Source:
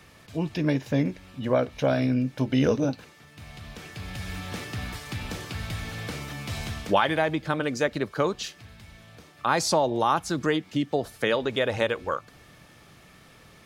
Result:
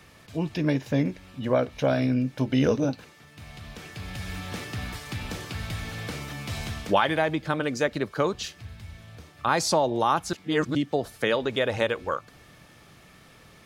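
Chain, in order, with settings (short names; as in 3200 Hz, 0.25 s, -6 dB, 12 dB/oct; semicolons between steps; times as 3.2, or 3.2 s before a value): 8.33–9.49 bell 80 Hz +10.5 dB 1.1 oct; 10.33–10.75 reverse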